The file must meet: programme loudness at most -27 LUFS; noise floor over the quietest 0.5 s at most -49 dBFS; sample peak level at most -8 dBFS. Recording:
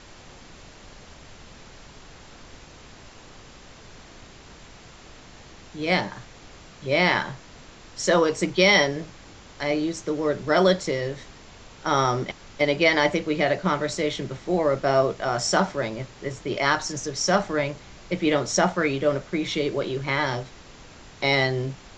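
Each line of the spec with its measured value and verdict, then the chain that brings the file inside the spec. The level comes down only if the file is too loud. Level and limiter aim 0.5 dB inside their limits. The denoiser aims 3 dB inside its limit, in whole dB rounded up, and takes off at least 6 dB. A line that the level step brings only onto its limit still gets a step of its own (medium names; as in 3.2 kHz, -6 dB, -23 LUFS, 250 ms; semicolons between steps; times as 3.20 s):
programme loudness -24.0 LUFS: fail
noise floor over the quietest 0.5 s -46 dBFS: fail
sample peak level -5.5 dBFS: fail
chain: trim -3.5 dB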